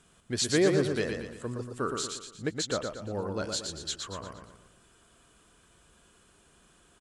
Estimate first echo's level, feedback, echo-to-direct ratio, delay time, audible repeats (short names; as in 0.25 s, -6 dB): -5.0 dB, 44%, -4.0 dB, 0.117 s, 5